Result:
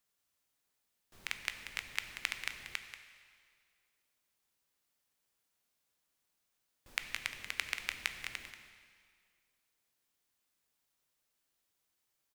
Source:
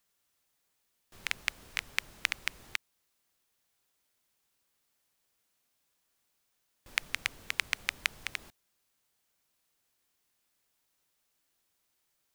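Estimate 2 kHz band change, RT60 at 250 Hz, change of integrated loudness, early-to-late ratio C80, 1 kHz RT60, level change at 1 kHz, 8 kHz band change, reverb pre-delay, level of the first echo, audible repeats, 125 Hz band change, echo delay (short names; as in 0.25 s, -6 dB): -4.5 dB, 2.0 s, -4.5 dB, 7.5 dB, 2.0 s, -4.5 dB, -4.5 dB, 6 ms, -11.0 dB, 1, -4.5 dB, 0.185 s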